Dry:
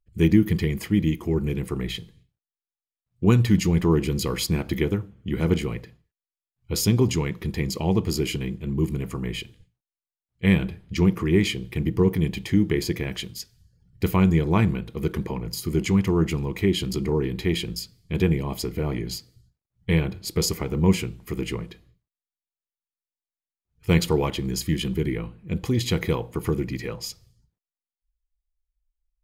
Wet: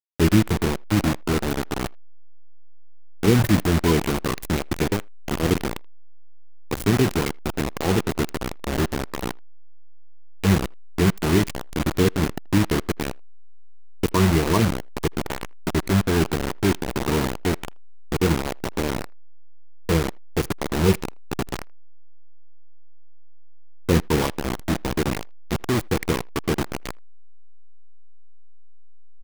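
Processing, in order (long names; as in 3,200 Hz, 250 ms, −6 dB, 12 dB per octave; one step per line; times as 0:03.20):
spectral magnitudes quantised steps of 30 dB
flat-topped bell 4,800 Hz −11 dB
bit reduction 4 bits
in parallel at −6 dB: slack as between gear wheels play −20.5 dBFS
on the sum: far-end echo of a speakerphone 80 ms, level −29 dB
level −2 dB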